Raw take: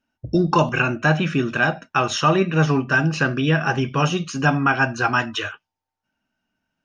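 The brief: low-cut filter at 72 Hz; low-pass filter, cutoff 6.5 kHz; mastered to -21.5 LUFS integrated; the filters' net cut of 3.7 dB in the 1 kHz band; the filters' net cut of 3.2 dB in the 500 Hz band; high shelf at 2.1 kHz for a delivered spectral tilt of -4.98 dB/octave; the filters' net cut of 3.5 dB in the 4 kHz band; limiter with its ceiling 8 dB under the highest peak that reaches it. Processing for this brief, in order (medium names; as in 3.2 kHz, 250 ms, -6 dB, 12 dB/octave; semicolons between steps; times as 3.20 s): high-pass 72 Hz; low-pass 6.5 kHz; peaking EQ 500 Hz -3.5 dB; peaking EQ 1 kHz -4.5 dB; treble shelf 2.1 kHz +4 dB; peaking EQ 4 kHz -9 dB; trim +3.5 dB; peak limiter -11 dBFS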